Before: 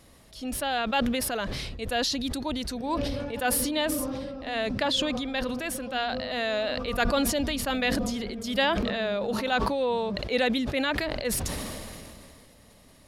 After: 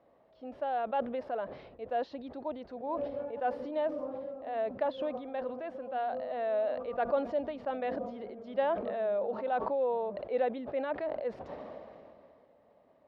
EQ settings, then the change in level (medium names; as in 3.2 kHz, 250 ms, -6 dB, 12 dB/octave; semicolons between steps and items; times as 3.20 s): band-pass filter 630 Hz, Q 1.9; distance through air 220 m; 0.0 dB